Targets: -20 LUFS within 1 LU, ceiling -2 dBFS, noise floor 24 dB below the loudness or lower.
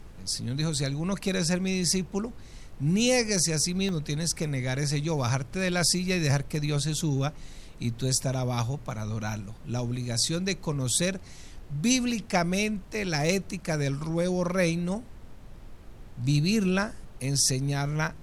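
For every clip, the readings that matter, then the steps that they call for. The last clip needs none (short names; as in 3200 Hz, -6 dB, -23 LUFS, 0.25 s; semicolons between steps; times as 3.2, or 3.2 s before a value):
dropouts 1; longest dropout 1.2 ms; noise floor -46 dBFS; noise floor target -52 dBFS; loudness -27.5 LUFS; peak -8.5 dBFS; loudness target -20.0 LUFS
-> interpolate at 3.89, 1.2 ms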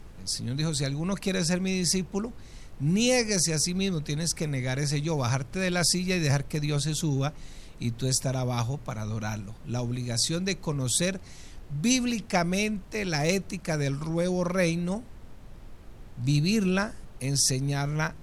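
dropouts 0; noise floor -46 dBFS; noise floor target -52 dBFS
-> noise print and reduce 6 dB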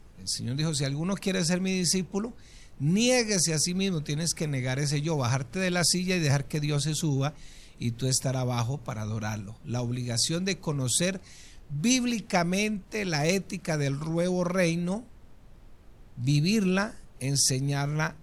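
noise floor -51 dBFS; noise floor target -52 dBFS
-> noise print and reduce 6 dB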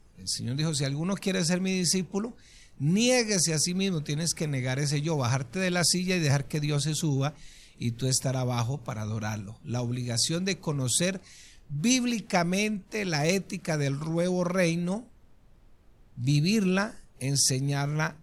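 noise floor -56 dBFS; loudness -27.5 LUFS; peak -8.5 dBFS; loudness target -20.0 LUFS
-> gain +7.5 dB; limiter -2 dBFS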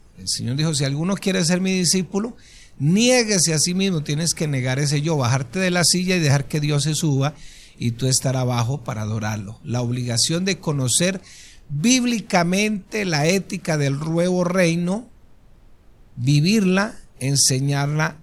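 loudness -20.0 LUFS; peak -2.0 dBFS; noise floor -48 dBFS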